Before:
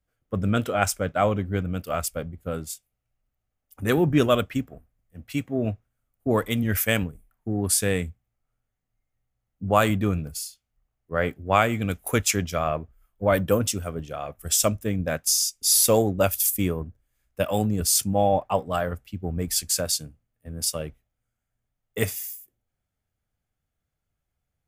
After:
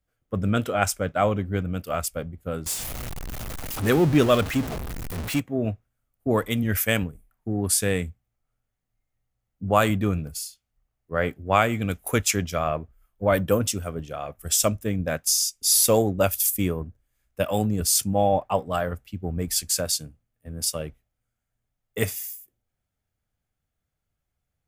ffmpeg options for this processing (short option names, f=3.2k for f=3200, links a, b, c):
-filter_complex "[0:a]asettb=1/sr,asplit=3[a][b][c];[a]atrim=end=2.664[d];[b]atrim=start=2.66:end=5.4,asetpts=PTS-STARTPTS,afade=t=in:d=0.004:c=qsin,afade=t=out:st=2.736:d=0.004:c=qsin,aeval=exprs='val(0)+0.5*0.0501*sgn(val(0))':c=same[e];[c]atrim=start=5.396[f];[d][e]acrossfade=d=0.004:c1=hsin:c2=qsin[g];[g][f]acrossfade=d=0.004:c1=qsin:c2=hsin"